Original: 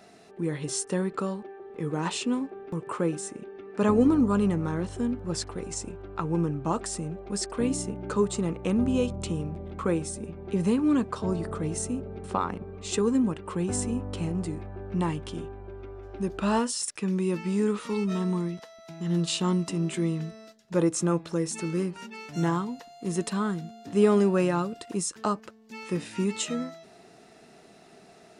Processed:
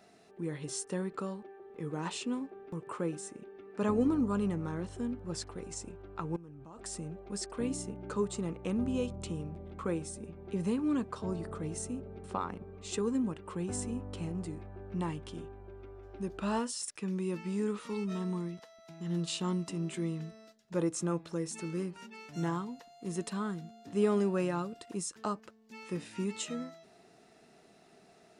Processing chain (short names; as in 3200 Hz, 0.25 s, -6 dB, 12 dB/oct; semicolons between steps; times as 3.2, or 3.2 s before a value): 6.36–6.85 level quantiser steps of 21 dB; gain -7.5 dB